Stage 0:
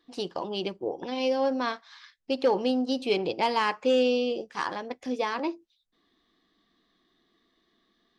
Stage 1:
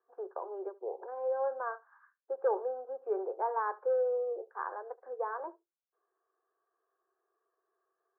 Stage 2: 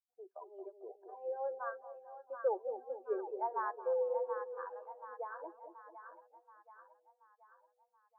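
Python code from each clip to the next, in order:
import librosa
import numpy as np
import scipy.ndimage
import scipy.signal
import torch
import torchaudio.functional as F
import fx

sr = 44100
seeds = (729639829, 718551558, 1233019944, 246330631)

y1 = scipy.signal.sosfilt(scipy.signal.cheby1(5, 1.0, [380.0, 1600.0], 'bandpass', fs=sr, output='sos'), x)
y1 = y1 + 10.0 ** (-23.0 / 20.0) * np.pad(y1, (int(73 * sr / 1000.0), 0))[:len(y1)]
y1 = y1 * 10.0 ** (-5.5 / 20.0)
y2 = fx.bin_expand(y1, sr, power=2.0)
y2 = fx.echo_split(y2, sr, split_hz=780.0, low_ms=223, high_ms=729, feedback_pct=52, wet_db=-7.0)
y2 = y2 * 10.0 ** (-1.5 / 20.0)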